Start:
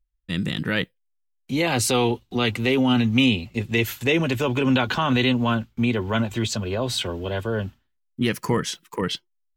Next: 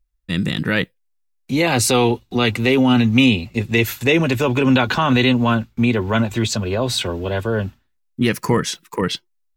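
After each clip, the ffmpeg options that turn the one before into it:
-af "bandreject=f=3.1k:w=13,volume=5dB"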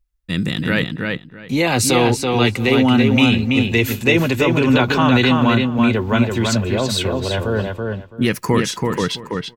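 -filter_complex "[0:a]asplit=2[a][b];[b]adelay=331,lowpass=f=4.2k:p=1,volume=-3.5dB,asplit=2[c][d];[d]adelay=331,lowpass=f=4.2k:p=1,volume=0.19,asplit=2[e][f];[f]adelay=331,lowpass=f=4.2k:p=1,volume=0.19[g];[a][c][e][g]amix=inputs=4:normalize=0"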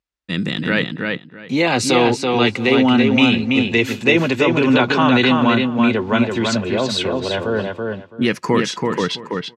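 -af "highpass=170,lowpass=5.8k,volume=1dB"

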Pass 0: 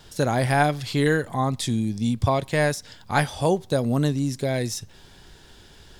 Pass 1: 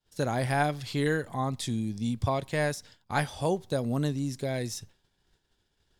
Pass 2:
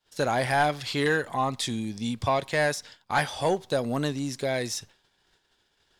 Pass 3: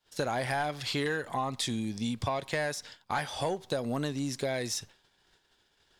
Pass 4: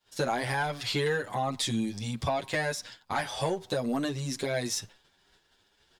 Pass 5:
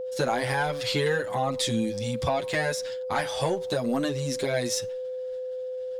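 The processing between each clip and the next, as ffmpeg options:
-af "agate=range=-33dB:threshold=-36dB:ratio=3:detection=peak,volume=-6.5dB"
-filter_complex "[0:a]asplit=2[a][b];[b]highpass=f=720:p=1,volume=14dB,asoftclip=type=tanh:threshold=-12dB[c];[a][c]amix=inputs=2:normalize=0,lowpass=f=5.2k:p=1,volume=-6dB"
-af "acompressor=threshold=-28dB:ratio=6"
-filter_complex "[0:a]asplit=2[a][b];[b]adelay=8.1,afreqshift=2.5[c];[a][c]amix=inputs=2:normalize=1,volume=5dB"
-af "aeval=exprs='val(0)+0.0224*sin(2*PI*510*n/s)':c=same,volume=2.5dB"

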